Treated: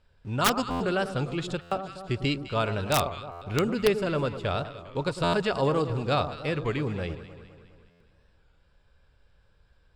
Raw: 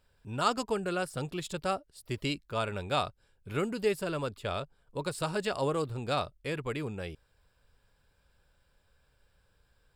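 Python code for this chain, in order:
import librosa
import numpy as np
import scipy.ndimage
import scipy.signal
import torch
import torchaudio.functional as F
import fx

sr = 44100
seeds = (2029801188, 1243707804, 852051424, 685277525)

p1 = fx.quant_dither(x, sr, seeds[0], bits=8, dither='none')
p2 = x + F.gain(torch.from_numpy(p1), -11.5).numpy()
p3 = scipy.signal.sosfilt(scipy.signal.butter(2, 5200.0, 'lowpass', fs=sr, output='sos'), p2)
p4 = fx.echo_alternate(p3, sr, ms=103, hz=1200.0, feedback_pct=73, wet_db=-10.5)
p5 = (np.mod(10.0 ** (16.0 / 20.0) * p4 + 1.0, 2.0) - 1.0) / 10.0 ** (16.0 / 20.0)
p6 = fx.low_shelf(p5, sr, hz=160.0, db=4.5)
p7 = fx.buffer_glitch(p6, sr, at_s=(0.7, 1.61, 3.31, 5.23, 7.9), block=512, repeats=8)
p8 = fx.record_warp(p7, sr, rpm=33.33, depth_cents=100.0)
y = F.gain(torch.from_numpy(p8), 2.5).numpy()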